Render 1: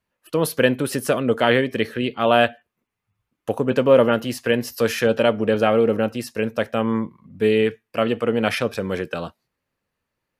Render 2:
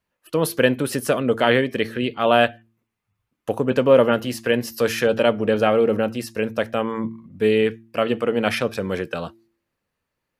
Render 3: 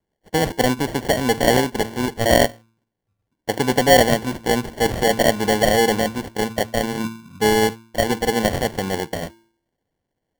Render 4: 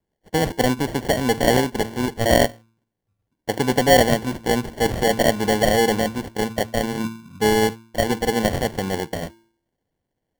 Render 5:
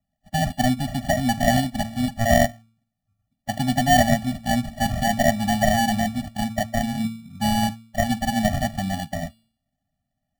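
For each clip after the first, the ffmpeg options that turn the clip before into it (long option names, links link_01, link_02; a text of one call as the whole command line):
ffmpeg -i in.wav -af "bandreject=frequency=113:width_type=h:width=4,bandreject=frequency=226:width_type=h:width=4,bandreject=frequency=339:width_type=h:width=4" out.wav
ffmpeg -i in.wav -af "acrusher=samples=35:mix=1:aa=0.000001,volume=1dB" out.wav
ffmpeg -i in.wav -af "lowshelf=frequency=370:gain=2.5,volume=-2dB" out.wav
ffmpeg -i in.wav -af "afftfilt=real='re*eq(mod(floor(b*sr/1024/280),2),0)':imag='im*eq(mod(floor(b*sr/1024/280),2),0)':win_size=1024:overlap=0.75,volume=1.5dB" out.wav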